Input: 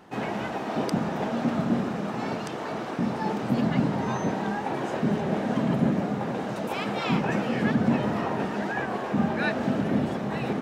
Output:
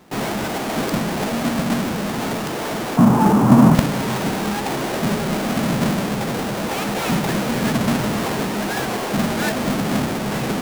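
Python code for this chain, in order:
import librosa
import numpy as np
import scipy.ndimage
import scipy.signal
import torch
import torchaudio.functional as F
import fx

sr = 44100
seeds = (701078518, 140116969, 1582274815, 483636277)

p1 = fx.halfwave_hold(x, sr)
p2 = fx.quant_companded(p1, sr, bits=2)
p3 = p1 + F.gain(torch.from_numpy(p2), -3.5).numpy()
p4 = fx.graphic_eq(p3, sr, hz=(125, 250, 1000, 2000, 4000), db=(10, 9, 11, -5, -6), at=(2.97, 3.75))
y = F.gain(torch.from_numpy(p4), -2.5).numpy()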